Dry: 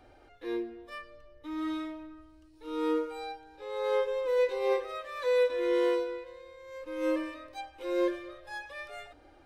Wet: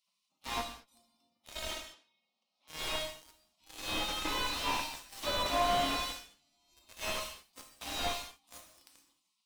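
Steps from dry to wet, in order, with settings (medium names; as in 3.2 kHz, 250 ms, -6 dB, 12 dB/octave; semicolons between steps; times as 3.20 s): on a send: thinning echo 274 ms, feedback 36%, high-pass 790 Hz, level -18 dB; on the sum: spectral gate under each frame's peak -25 dB weak; static phaser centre 440 Hz, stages 6; in parallel at -6 dB: fuzz box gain 52 dB, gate -55 dBFS; 1.71–2.68 s: on the sum: band-pass 270–4300 Hz; gated-style reverb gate 250 ms falling, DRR 4 dB; slew-rate limiter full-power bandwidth 96 Hz; trim -3.5 dB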